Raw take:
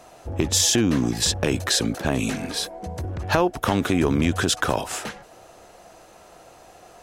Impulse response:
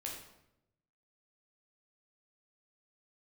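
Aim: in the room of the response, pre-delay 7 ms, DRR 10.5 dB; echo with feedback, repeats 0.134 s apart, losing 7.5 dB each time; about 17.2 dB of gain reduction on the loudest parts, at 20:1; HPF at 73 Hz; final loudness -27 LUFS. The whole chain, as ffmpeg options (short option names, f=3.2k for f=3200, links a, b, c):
-filter_complex "[0:a]highpass=73,acompressor=threshold=-33dB:ratio=20,aecho=1:1:134|268|402|536|670:0.422|0.177|0.0744|0.0312|0.0131,asplit=2[a][b];[1:a]atrim=start_sample=2205,adelay=7[c];[b][c]afir=irnorm=-1:irlink=0,volume=-9.5dB[d];[a][d]amix=inputs=2:normalize=0,volume=10.5dB"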